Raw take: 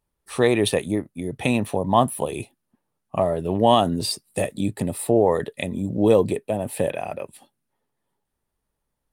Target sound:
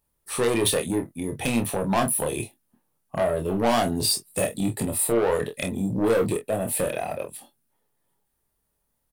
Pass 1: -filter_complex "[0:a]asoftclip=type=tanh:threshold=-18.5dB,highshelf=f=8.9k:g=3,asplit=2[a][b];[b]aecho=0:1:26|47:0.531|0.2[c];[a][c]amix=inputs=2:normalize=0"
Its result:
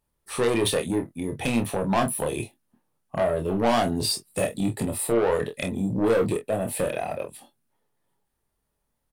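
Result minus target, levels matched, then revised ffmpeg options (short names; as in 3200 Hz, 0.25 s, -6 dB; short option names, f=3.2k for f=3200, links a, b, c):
8000 Hz band -4.0 dB
-filter_complex "[0:a]asoftclip=type=tanh:threshold=-18.5dB,highshelf=f=8.9k:g=12.5,asplit=2[a][b];[b]aecho=0:1:26|47:0.531|0.2[c];[a][c]amix=inputs=2:normalize=0"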